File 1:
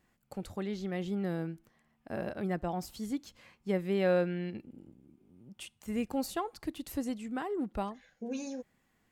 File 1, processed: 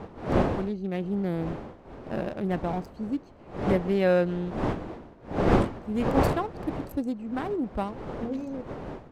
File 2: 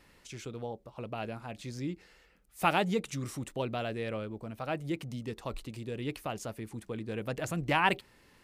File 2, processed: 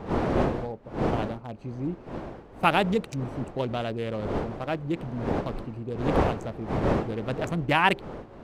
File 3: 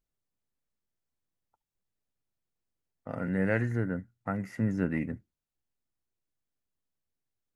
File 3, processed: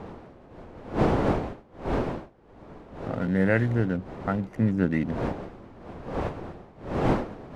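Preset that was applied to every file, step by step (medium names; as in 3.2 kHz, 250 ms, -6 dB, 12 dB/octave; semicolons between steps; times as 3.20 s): local Wiener filter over 25 samples; wind noise 530 Hz -37 dBFS; trim +5.5 dB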